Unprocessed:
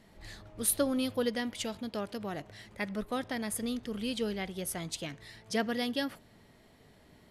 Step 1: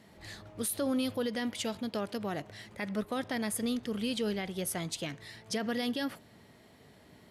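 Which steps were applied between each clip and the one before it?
HPF 77 Hz; limiter -26.5 dBFS, peak gain reduction 11 dB; gain +2.5 dB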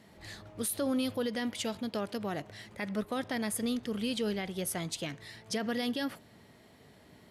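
nothing audible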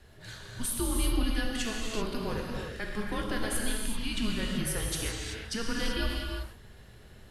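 band noise 85–220 Hz -57 dBFS; non-linear reverb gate 0.41 s flat, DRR -2 dB; frequency shift -220 Hz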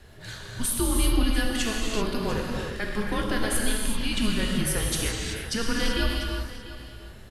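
echo 0.694 s -15.5 dB; gain +5.5 dB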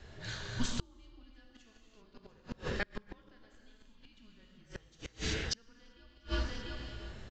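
downsampling 16000 Hz; flipped gate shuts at -18 dBFS, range -32 dB; gain -2.5 dB

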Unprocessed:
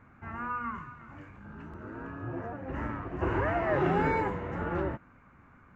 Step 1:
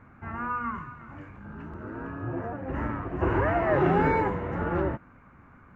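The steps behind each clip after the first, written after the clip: high shelf 3200 Hz -7.5 dB; gain +4.5 dB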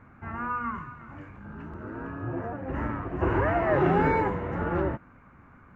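nothing audible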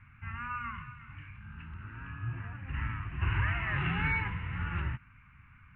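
EQ curve 120 Hz 0 dB, 370 Hz -24 dB, 590 Hz -29 dB, 1000 Hz -10 dB, 1800 Hz -1 dB, 2700 Hz +9 dB, 4900 Hz -17 dB

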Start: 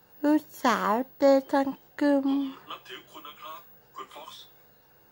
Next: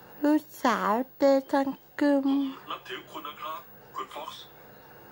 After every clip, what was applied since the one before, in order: three-band squash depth 40%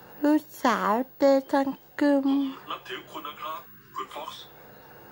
spectral gain 3.66–4.05, 430–960 Hz -29 dB; gain +1.5 dB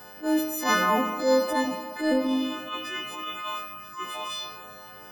frequency quantiser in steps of 3 st; Schroeder reverb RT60 2.8 s, combs from 32 ms, DRR 8 dB; transient shaper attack -10 dB, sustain +3 dB

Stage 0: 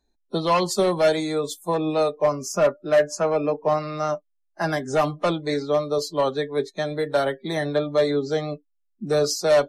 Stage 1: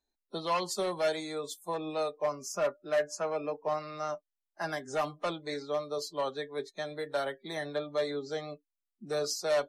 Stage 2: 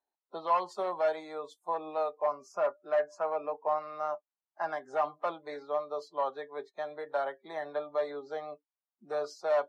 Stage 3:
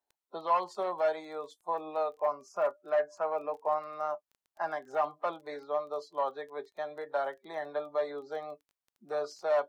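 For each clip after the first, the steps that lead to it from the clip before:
low shelf 380 Hz -9.5 dB; gain -8 dB
band-pass 880 Hz, Q 1.7; gain +5 dB
crackle 15/s -47 dBFS

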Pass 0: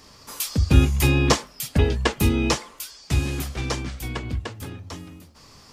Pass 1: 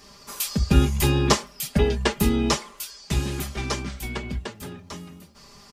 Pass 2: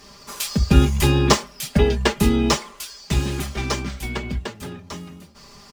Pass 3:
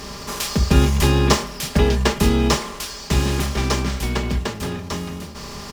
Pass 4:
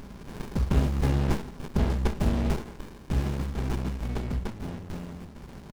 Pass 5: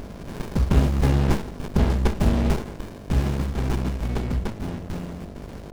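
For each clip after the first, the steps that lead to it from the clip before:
comb 5 ms, depth 73%; gain -1.5 dB
median filter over 3 samples; gain +3.5 dB
per-bin compression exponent 0.6; gain -2.5 dB
echo 0.17 s -22 dB; running maximum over 65 samples; gain -7 dB
buzz 50 Hz, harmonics 14, -46 dBFS -3 dB/oct; gain +5 dB

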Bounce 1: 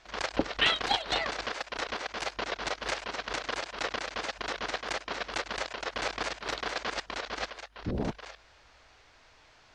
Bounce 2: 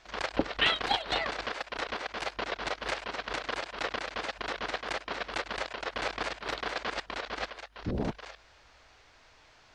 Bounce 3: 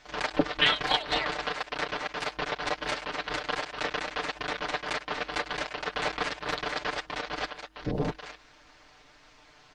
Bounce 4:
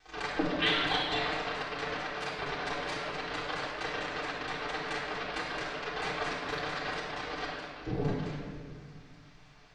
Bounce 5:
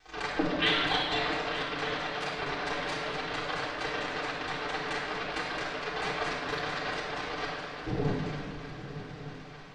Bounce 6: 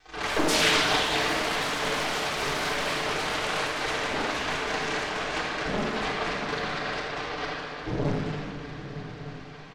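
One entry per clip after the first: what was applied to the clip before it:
dynamic EQ 6400 Hz, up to -6 dB, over -54 dBFS, Q 1.4
AM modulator 270 Hz, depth 70%; comb 6.7 ms, depth 70%; gain +4.5 dB
vibrato 3.2 Hz 63 cents; shoebox room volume 2500 m³, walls mixed, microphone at 3.7 m; gain -9 dB
swung echo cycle 1.209 s, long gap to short 3:1, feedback 51%, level -13 dB; gain +1.5 dB
echo 80 ms -7 dB; echoes that change speed 88 ms, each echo +6 st, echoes 3; Doppler distortion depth 0.69 ms; gain +2 dB

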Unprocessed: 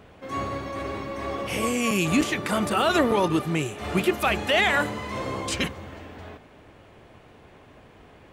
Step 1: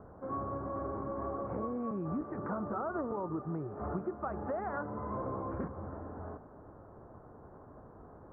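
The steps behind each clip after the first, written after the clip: steep low-pass 1400 Hz 48 dB/oct; compressor 6:1, threshold -32 dBFS, peak gain reduction 14.5 dB; gain -2 dB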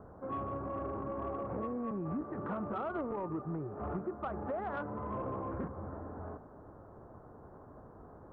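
soft clip -27.5 dBFS, distortion -23 dB

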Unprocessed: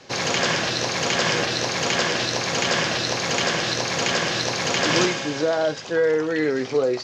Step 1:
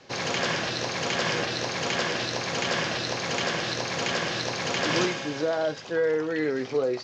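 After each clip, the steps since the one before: air absorption 52 m; gain -4.5 dB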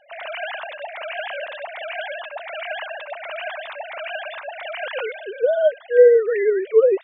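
sine-wave speech; gain +6 dB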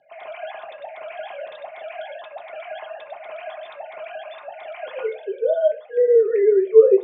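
reverb RT60 0.30 s, pre-delay 3 ms, DRR 0 dB; gain -12.5 dB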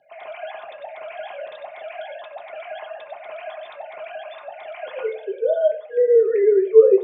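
darkening echo 91 ms, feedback 32%, low-pass 3300 Hz, level -16.5 dB

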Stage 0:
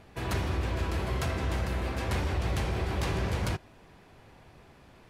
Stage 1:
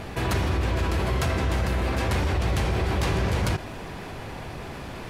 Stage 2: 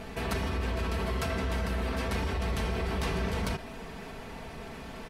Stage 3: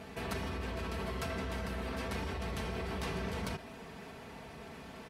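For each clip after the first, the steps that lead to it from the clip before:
fast leveller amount 50%; gain +4 dB
comb 4.5 ms, depth 58%; dynamic EQ 6900 Hz, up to -4 dB, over -55 dBFS, Q 5.4; gain -6.5 dB
HPF 69 Hz; gain -5.5 dB

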